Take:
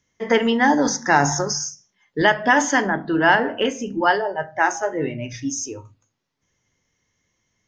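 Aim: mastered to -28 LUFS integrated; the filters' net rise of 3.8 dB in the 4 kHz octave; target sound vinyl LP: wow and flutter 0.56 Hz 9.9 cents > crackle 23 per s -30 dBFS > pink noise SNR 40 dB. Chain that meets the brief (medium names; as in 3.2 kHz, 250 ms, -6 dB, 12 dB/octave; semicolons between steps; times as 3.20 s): peaking EQ 4 kHz +6 dB; wow and flutter 0.56 Hz 9.9 cents; crackle 23 per s -30 dBFS; pink noise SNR 40 dB; trim -8.5 dB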